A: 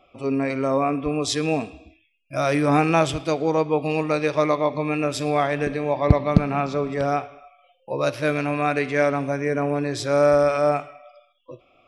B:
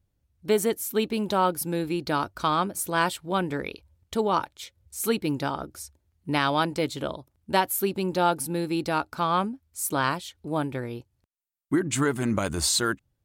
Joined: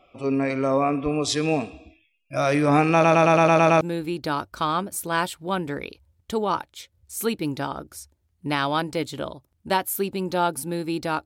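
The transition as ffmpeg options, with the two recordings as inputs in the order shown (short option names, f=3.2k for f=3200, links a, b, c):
-filter_complex "[0:a]apad=whole_dur=11.25,atrim=end=11.25,asplit=8[a][b][c][d][e][f][g][h];[a]atrim=end=3.042[i];[b]atrim=start=2.928:end=3.042[j];[c]atrim=start=2.928:end=3.042[k];[d]atrim=start=2.928:end=3.042[l];[e]atrim=start=2.928:end=3.042[m];[f]atrim=start=2.928:end=3.042[n];[g]atrim=start=2.928:end=3.042[o];[h]atrim=start=2.928:end=3.042[p];[1:a]atrim=start=1.638:end=9.08[q];[i][j]acrossfade=d=0.004:c1=hsin:c2=hsin[r];[r][k]acrossfade=d=0.004:c1=hsin:c2=hsin[s];[s][l]acrossfade=d=0.004:c1=hsin:c2=hsin[t];[t][m]acrossfade=d=0.004:c1=hsin:c2=hsin[u];[u][n]acrossfade=d=0.004:c1=hsin:c2=hsin[v];[v][o]acrossfade=d=0.004:c1=hsin:c2=hsin[w];[w][p]acrossfade=d=0.004:c1=hsin:c2=hsin[x];[x][q]acrossfade=d=0.004:c1=hsin:c2=hsin"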